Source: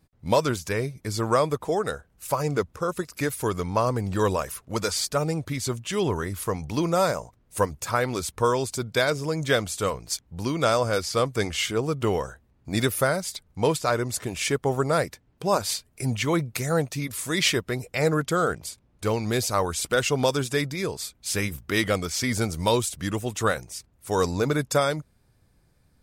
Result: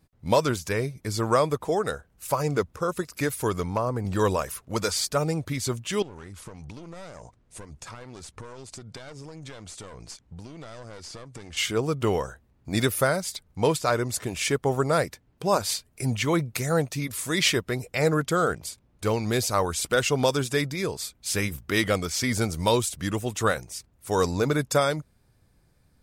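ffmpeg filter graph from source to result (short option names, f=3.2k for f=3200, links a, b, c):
-filter_complex "[0:a]asettb=1/sr,asplit=3[a][b][c];[a]atrim=end=3.634[d];[b]atrim=start=3.63:end=4.05,asetpts=PTS-STARTPTS,afade=t=in:d=0.004:c=qsin,afade=t=out:st=0.416:d=0.004:c=qsin,acrossover=split=800|1800|6200[e][f][g][h];[e]acompressor=threshold=-25dB:ratio=3[i];[f]acompressor=threshold=-30dB:ratio=3[j];[g]acompressor=threshold=-58dB:ratio=3[k];[h]acompressor=threshold=-57dB:ratio=3[l];[i][j][k][l]amix=inputs=4:normalize=0,asoftclip=type=hard:threshold=-17dB[m];[c]atrim=start=4.046[n];[d][m]acrossfade=d=0.004:c1=hsin:c2=qsin[o];[o][n]acrossfade=d=0.004:c1=qsin:c2=hsin,asettb=1/sr,asplit=3[p][q][r];[p]atrim=end=6.024[s];[q]atrim=start=6.02:end=11.57,asetpts=PTS-STARTPTS,afade=t=in:d=0.004:c=qsin,afade=t=out:st=5.546:d=0.004:c=qsin,aeval=exprs='clip(val(0),-1,0.0251)':c=same,acompressor=threshold=-36dB:ratio=16:attack=3.2:release=140:knee=1:detection=peak,lowpass=f=9.5k:w=0.5412,lowpass=f=9.5k:w=1.3066[t];[r]atrim=start=11.566[u];[s][t]acrossfade=d=0.004:c1=hsin:c2=qsin[v];[v][u]acrossfade=d=0.004:c1=qsin:c2=hsin"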